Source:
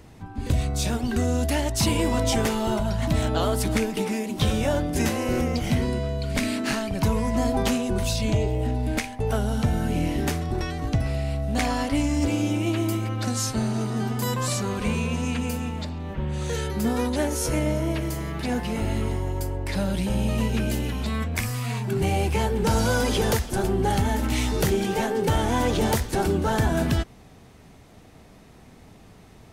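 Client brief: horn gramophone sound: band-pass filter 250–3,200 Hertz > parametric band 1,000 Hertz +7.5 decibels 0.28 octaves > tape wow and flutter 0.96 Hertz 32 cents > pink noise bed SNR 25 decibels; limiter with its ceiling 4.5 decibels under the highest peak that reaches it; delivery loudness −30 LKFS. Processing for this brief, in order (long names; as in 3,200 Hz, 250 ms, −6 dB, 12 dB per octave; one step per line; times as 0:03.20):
brickwall limiter −18 dBFS
band-pass filter 250–3,200 Hz
parametric band 1,000 Hz +7.5 dB 0.28 octaves
tape wow and flutter 0.96 Hz 32 cents
pink noise bed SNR 25 dB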